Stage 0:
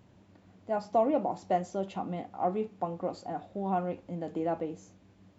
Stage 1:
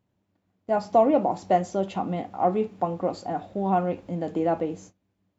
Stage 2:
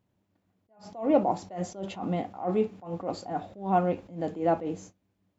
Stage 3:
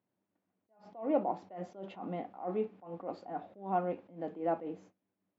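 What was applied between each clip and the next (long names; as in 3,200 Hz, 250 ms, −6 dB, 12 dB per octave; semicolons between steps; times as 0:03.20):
noise gate −52 dBFS, range −22 dB; level +7 dB
level that may rise only so fast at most 140 dB per second
band-pass filter 210–2,600 Hz; level −7 dB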